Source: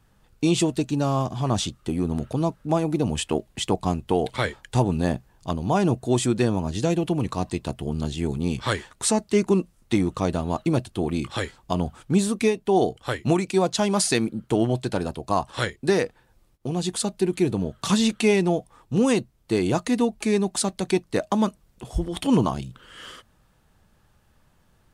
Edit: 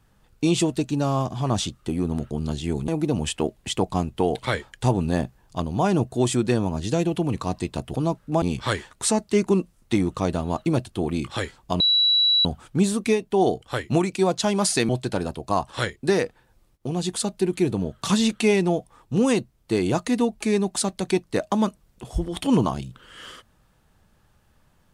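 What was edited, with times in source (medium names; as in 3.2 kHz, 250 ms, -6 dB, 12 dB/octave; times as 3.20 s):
2.31–2.79 s: swap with 7.85–8.42 s
11.80 s: add tone 3.92 kHz -15.5 dBFS 0.65 s
14.24–14.69 s: delete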